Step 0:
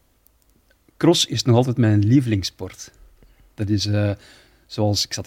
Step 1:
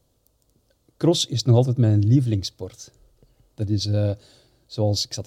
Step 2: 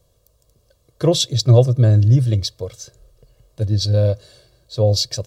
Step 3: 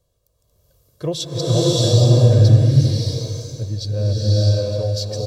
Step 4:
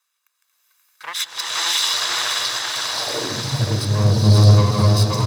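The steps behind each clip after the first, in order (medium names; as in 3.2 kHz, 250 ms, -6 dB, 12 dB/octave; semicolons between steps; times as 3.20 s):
graphic EQ 125/500/2000/4000/8000 Hz +10/+8/-9/+6/+4 dB; trim -8.5 dB
comb 1.8 ms, depth 66%; trim +3 dB
feedback delay 378 ms, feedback 48%, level -14 dB; swelling reverb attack 640 ms, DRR -7.5 dB; trim -8 dB
comb filter that takes the minimum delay 0.8 ms; high-pass sweep 1.7 kHz -> 140 Hz, 2.80–3.49 s; bouncing-ball echo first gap 530 ms, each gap 0.85×, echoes 5; trim +3.5 dB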